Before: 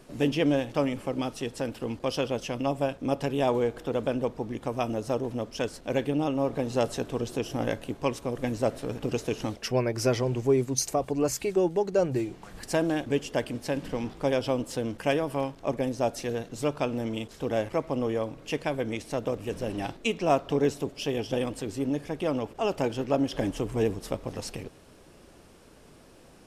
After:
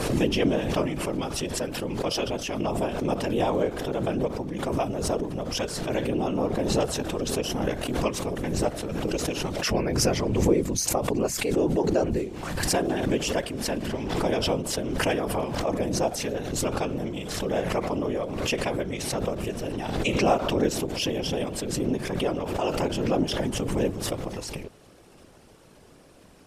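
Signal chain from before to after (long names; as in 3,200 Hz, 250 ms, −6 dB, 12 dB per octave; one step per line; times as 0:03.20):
random phases in short frames
background raised ahead of every attack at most 37 dB per second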